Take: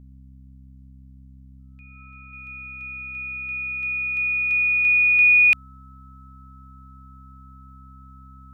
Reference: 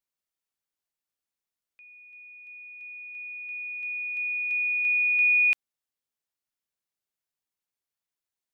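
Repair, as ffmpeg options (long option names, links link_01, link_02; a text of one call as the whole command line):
ffmpeg -i in.wav -af "bandreject=frequency=65.7:width_type=h:width=4,bandreject=frequency=131.4:width_type=h:width=4,bandreject=frequency=197.1:width_type=h:width=4,bandreject=frequency=262.8:width_type=h:width=4,bandreject=frequency=1300:width=30,asetnsamples=nb_out_samples=441:pad=0,asendcmd='2.33 volume volume -6.5dB',volume=0dB" out.wav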